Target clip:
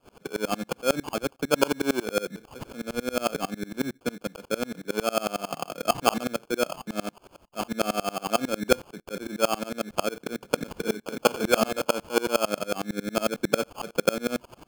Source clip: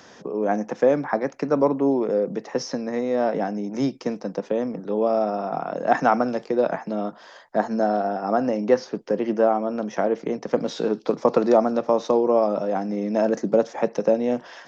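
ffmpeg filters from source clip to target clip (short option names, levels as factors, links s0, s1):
-filter_complex "[0:a]acrusher=samples=23:mix=1:aa=0.000001,asettb=1/sr,asplit=3[s0][s1][s2];[s0]atrim=end=10.764[s3];[s1]atrim=start=10.76:end=11.85,asetpts=PTS-STARTPTS,afade=t=in:d=0.004:c=qsin,afade=t=out:st=1.086:d=0.004:c=qsin,asplit=2[s4][s5];[s5]adelay=32,volume=0.562[s6];[s4][s6]amix=inputs=2:normalize=0,atrim=end_sample=48069[s7];[s2]atrim=start=11.846[s8];[s3][s7]acrossfade=d=0.004:c1=hsin:c2=qsin[s9];[s9][s8]acrossfade=d=0.004:c1=qsin:c2=hsin,aeval=exprs='val(0)*pow(10,-28*if(lt(mod(-11*n/s,1),2*abs(-11)/1000),1-mod(-11*n/s,1)/(2*abs(-11)/1000),(mod(-11*n/s,1)-2*abs(-11)/1000)/(1-2*abs(-11)/1000))/20)':c=same,volume=1.26"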